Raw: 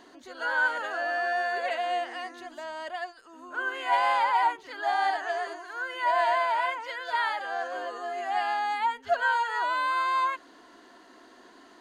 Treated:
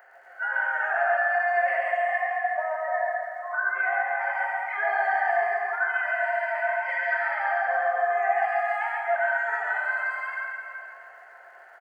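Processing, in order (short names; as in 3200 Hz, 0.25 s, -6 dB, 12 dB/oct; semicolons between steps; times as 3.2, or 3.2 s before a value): per-bin compression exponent 0.4; 2.16–4.22 LPF 2600 Hz 12 dB/oct; spectral noise reduction 29 dB; HPF 380 Hz 24 dB/oct; bell 1100 Hz +14.5 dB 2.7 oct; compressor, threshold -21 dBFS, peak gain reduction 16 dB; fixed phaser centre 1000 Hz, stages 6; crackle 110/s -54 dBFS; echo 0.137 s -3.5 dB; plate-style reverb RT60 2.7 s, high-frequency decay 0.8×, DRR 0 dB; gain -3.5 dB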